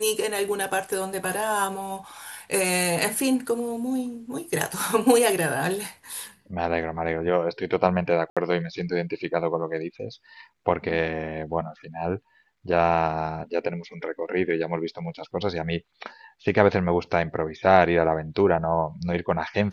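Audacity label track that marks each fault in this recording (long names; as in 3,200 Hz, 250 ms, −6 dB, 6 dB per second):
8.300000	8.370000	drop-out 66 ms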